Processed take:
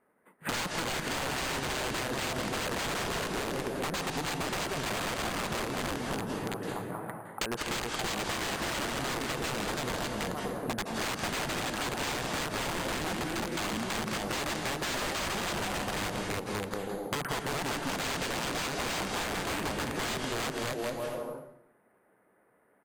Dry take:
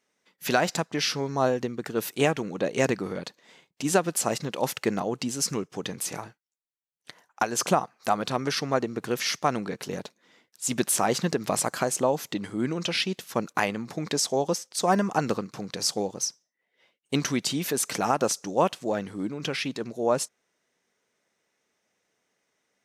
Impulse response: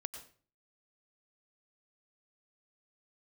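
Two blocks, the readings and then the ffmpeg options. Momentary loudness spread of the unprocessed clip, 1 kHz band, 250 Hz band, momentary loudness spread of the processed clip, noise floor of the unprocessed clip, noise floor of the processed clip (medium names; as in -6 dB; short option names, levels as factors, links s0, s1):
8 LU, -4.5 dB, -6.5 dB, 3 LU, -79 dBFS, -67 dBFS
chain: -filter_complex "[0:a]lowpass=f=1500:w=0.5412,lowpass=f=1500:w=1.3066,aemphasis=mode=production:type=75kf,asplit=2[s0][s1];[s1]alimiter=limit=0.168:level=0:latency=1:release=140,volume=0.891[s2];[s0][s2]amix=inputs=2:normalize=0,aecho=1:1:330|577.5|763.1|902.3|1007:0.631|0.398|0.251|0.158|0.1,aresample=11025,aeval=exprs='(mod(10*val(0)+1,2)-1)/10':c=same,aresample=44100,acrusher=samples=4:mix=1:aa=0.000001[s3];[1:a]atrim=start_sample=2205,asetrate=24696,aresample=44100[s4];[s3][s4]afir=irnorm=-1:irlink=0,acompressor=threshold=0.0224:ratio=6,volume=1.26"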